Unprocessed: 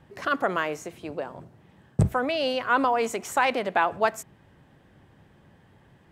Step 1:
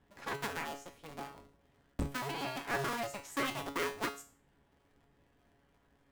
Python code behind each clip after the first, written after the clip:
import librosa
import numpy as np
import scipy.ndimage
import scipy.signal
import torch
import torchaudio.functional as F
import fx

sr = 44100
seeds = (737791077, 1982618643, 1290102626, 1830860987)

y = fx.cycle_switch(x, sr, every=2, mode='inverted')
y = fx.comb_fb(y, sr, f0_hz=140.0, decay_s=0.39, harmonics='all', damping=0.0, mix_pct=80)
y = y * 10.0 ** (-3.5 / 20.0)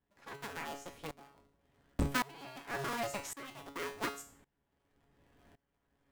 y = fx.tremolo_decay(x, sr, direction='swelling', hz=0.9, depth_db=23)
y = y * 10.0 ** (7.5 / 20.0)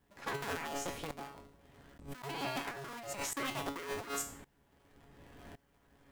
y = fx.over_compress(x, sr, threshold_db=-47.0, ratio=-1.0)
y = y * 10.0 ** (5.5 / 20.0)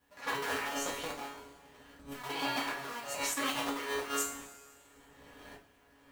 y = fx.low_shelf(x, sr, hz=340.0, db=-9.0)
y = fx.rev_double_slope(y, sr, seeds[0], early_s=0.25, late_s=1.9, knee_db=-18, drr_db=-4.5)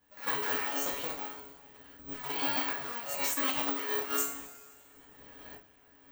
y = (np.kron(scipy.signal.resample_poly(x, 1, 2), np.eye(2)[0]) * 2)[:len(x)]